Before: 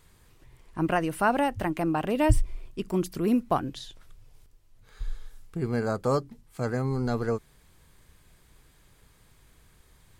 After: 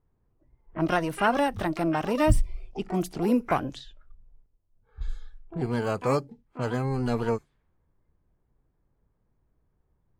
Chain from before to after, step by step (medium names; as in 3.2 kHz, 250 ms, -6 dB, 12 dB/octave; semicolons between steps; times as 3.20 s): harmony voices +12 st -10 dB; spectral noise reduction 12 dB; level-controlled noise filter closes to 830 Hz, open at -24.5 dBFS